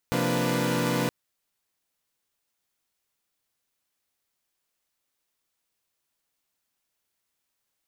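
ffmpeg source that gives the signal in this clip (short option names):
-f lavfi -i "aevalsrc='0.0422*((2*mod(130.81*t,1)-1)+(2*mod(174.61*t,1)-1)+(2*mod(233.08*t,1)-1)+(2*mod(293.66*t,1)-1)+(2*mod(493.88*t,1)-1))':d=0.97:s=44100"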